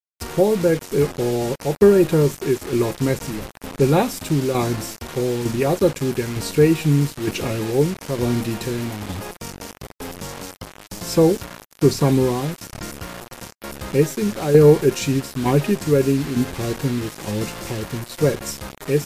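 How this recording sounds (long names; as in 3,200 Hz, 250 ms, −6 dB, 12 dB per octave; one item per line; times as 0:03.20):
tremolo saw down 1.1 Hz, depth 60%
a quantiser's noise floor 6 bits, dither none
MP3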